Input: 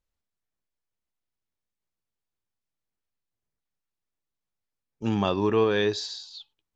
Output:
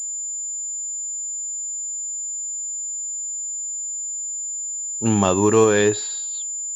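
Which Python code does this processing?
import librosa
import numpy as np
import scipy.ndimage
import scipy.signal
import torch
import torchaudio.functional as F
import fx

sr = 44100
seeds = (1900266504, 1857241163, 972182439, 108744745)

y = fx.pwm(x, sr, carrier_hz=7100.0)
y = y * 10.0 ** (7.0 / 20.0)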